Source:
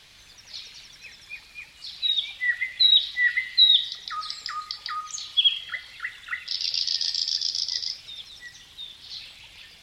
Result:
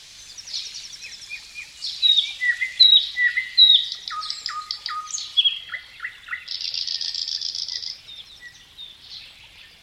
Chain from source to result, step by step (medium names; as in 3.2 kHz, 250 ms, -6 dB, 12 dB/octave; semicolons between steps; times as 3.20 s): peaking EQ 6.5 kHz +12 dB 1.5 oct, from 2.83 s +4.5 dB, from 5.42 s -3 dB; trim +1.5 dB